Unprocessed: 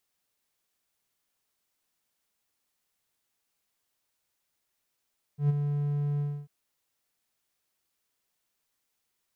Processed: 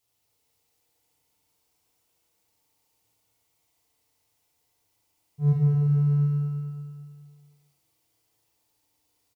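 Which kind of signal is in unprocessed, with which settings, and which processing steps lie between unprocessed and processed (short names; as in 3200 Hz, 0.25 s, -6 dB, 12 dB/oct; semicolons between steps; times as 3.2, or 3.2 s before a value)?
ADSR triangle 145 Hz, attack 0.114 s, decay 22 ms, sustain -7 dB, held 0.82 s, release 0.275 s -17 dBFS
fifteen-band EQ 100 Hz +9 dB, 250 Hz -4 dB, 1600 Hz -9 dB; feedback echo 0.22 s, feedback 50%, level -4.5 dB; FDN reverb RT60 2.5 s, low-frequency decay 0.85×, high-frequency decay 0.4×, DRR -6.5 dB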